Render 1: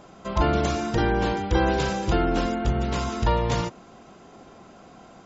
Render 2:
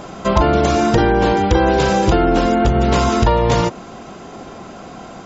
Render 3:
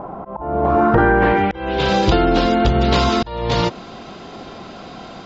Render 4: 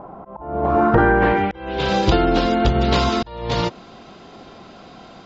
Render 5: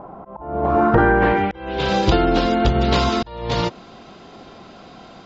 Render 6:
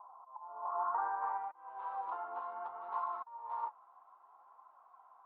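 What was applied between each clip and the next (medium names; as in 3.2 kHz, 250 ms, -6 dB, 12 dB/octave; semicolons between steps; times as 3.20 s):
in parallel at -2 dB: gain riding; on the sum: dynamic bell 530 Hz, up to +4 dB, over -27 dBFS, Q 0.7; compression, threshold -19 dBFS, peak gain reduction 9.5 dB; trim +8.5 dB
slow attack 420 ms; low-pass sweep 910 Hz -> 4.2 kHz, 0.60–1.99 s; trim -1 dB
upward expansion 1.5:1, over -24 dBFS
no audible change
flange 0.64 Hz, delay 2.7 ms, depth 9 ms, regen +55%; Butterworth band-pass 1 kHz, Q 3.2; trim -5.5 dB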